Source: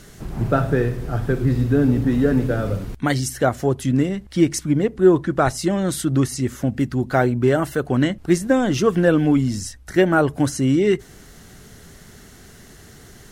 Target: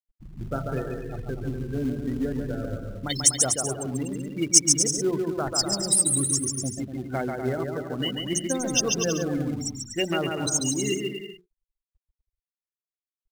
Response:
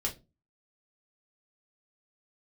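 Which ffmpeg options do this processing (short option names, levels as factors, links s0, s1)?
-filter_complex "[0:a]bandreject=f=60:t=h:w=6,bandreject=f=120:t=h:w=6,bandreject=f=180:t=h:w=6,bandreject=f=240:t=h:w=6,bandreject=f=300:t=h:w=6,bandreject=f=360:t=h:w=6,bandreject=f=420:t=h:w=6,afftfilt=real='re*gte(hypot(re,im),0.0891)':imag='im*gte(hypot(re,im),0.0891)':win_size=1024:overlap=0.75,aecho=1:1:140|245|323.8|382.8|427.1:0.631|0.398|0.251|0.158|0.1,aexciter=amount=13.7:drive=5.3:freq=2700,asplit=2[s0][s1];[s1]acrusher=bits=3:mode=log:mix=0:aa=0.000001,volume=0.473[s2];[s0][s2]amix=inputs=2:normalize=0,volume=0.178"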